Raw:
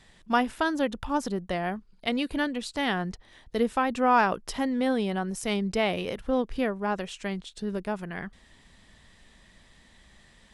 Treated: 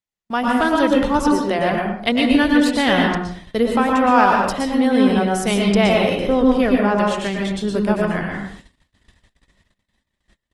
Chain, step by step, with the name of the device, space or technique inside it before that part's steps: 1.19–1.59 HPF 230 Hz 24 dB/oct; speakerphone in a meeting room (reverb RT60 0.50 s, pre-delay 0.112 s, DRR 1 dB; speakerphone echo 0.1 s, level -8 dB; AGC gain up to 11 dB; gate -37 dBFS, range -41 dB; gain -1 dB; Opus 24 kbps 48000 Hz)

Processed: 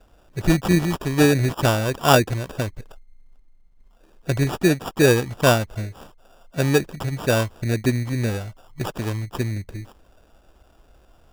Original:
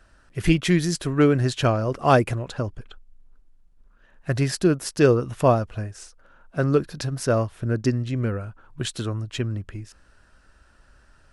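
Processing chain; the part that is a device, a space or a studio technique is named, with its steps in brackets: crushed at another speed (playback speed 0.5×; sample-and-hold 42×; playback speed 2×); gain +1.5 dB

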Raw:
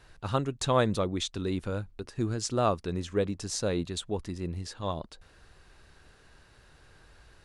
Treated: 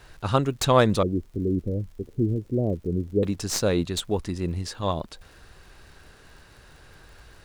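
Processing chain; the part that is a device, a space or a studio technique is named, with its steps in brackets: 1.03–3.23 inverse Chebyshev low-pass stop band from 1200 Hz, stop band 50 dB; record under a worn stylus (tracing distortion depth 0.046 ms; crackle 80/s -51 dBFS; pink noise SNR 40 dB); gain +6.5 dB

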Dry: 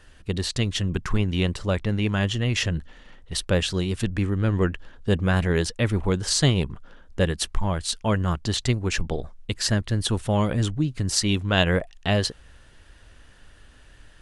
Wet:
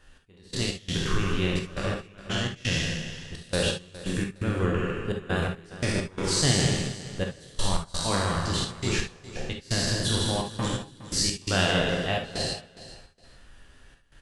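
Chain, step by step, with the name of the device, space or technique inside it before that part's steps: spectral trails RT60 1.22 s; loudspeakers at several distances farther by 53 m -5 dB, 78 m -10 dB; trance gate with a delay (step gate "x..x.xxxx." 85 bpm -24 dB; feedback echo 0.413 s, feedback 22%, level -16 dB); non-linear reverb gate 90 ms flat, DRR 2.5 dB; gain -7.5 dB

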